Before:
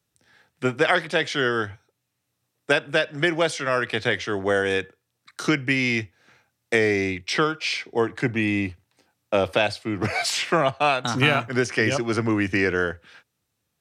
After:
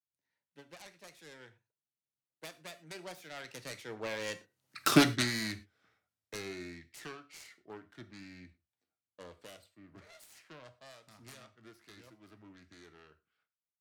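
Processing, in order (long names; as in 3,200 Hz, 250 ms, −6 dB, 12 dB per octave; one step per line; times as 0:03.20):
phase distortion by the signal itself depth 0.39 ms
source passing by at 0:04.84, 34 m/s, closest 1.9 metres
reverb whose tail is shaped and stops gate 140 ms falling, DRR 10.5 dB
level +8 dB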